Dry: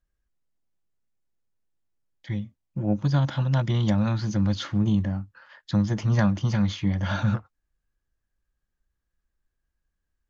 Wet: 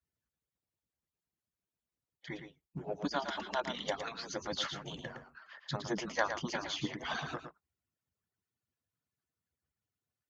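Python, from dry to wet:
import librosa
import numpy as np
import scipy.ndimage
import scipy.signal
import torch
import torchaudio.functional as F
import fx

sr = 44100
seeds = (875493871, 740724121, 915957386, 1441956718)

y = fx.hpss_only(x, sr, part='percussive')
y = scipy.signal.sosfilt(scipy.signal.butter(2, 43.0, 'highpass', fs=sr, output='sos'), y)
y = y + 10.0 ** (-8.0 / 20.0) * np.pad(y, (int(113 * sr / 1000.0), 0))[:len(y)]
y = y * librosa.db_to_amplitude(-1.5)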